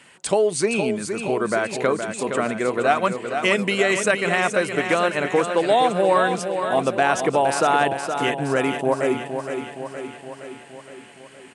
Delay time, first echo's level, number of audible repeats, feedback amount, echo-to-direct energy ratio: 467 ms, −7.5 dB, 7, 60%, −5.5 dB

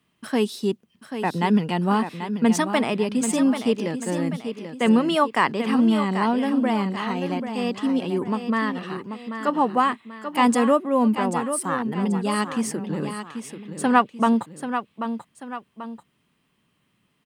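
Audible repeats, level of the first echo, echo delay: 2, −9.0 dB, 787 ms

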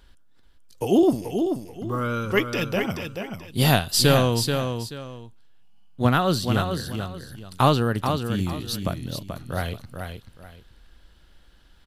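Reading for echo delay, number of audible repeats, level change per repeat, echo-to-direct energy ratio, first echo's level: 433 ms, 2, −11.5 dB, −6.0 dB, −6.5 dB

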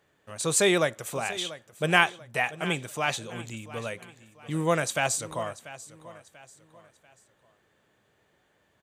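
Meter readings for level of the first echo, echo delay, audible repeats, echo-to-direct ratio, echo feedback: −16.5 dB, 689 ms, 3, −16.0 dB, 38%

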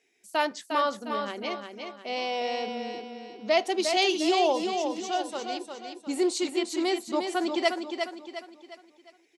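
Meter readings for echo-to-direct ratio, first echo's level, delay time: −5.0 dB, −6.0 dB, 355 ms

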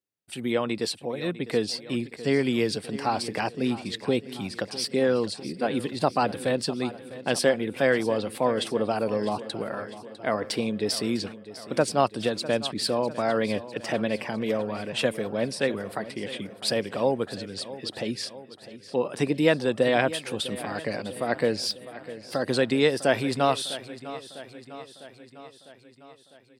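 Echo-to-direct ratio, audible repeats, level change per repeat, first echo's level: −13.5 dB, 5, −4.5 dB, −15.5 dB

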